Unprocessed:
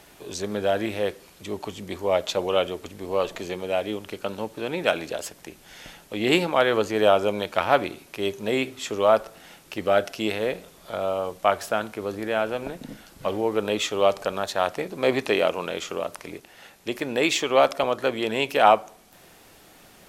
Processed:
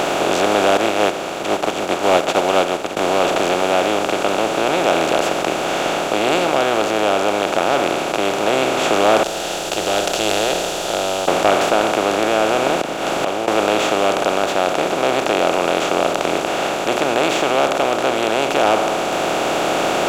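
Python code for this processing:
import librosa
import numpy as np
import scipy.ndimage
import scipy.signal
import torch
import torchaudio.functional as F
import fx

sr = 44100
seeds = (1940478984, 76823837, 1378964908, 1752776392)

y = fx.upward_expand(x, sr, threshold_db=-42.0, expansion=2.5, at=(0.77, 2.97))
y = fx.cheby2_bandstop(y, sr, low_hz=120.0, high_hz=2400.0, order=4, stop_db=40, at=(9.23, 11.28))
y = fx.gate_flip(y, sr, shuts_db=-31.0, range_db=-27, at=(12.78, 13.48))
y = fx.bin_compress(y, sr, power=0.2)
y = fx.rider(y, sr, range_db=10, speed_s=2.0)
y = fx.leveller(y, sr, passes=1)
y = y * librosa.db_to_amplitude(-7.5)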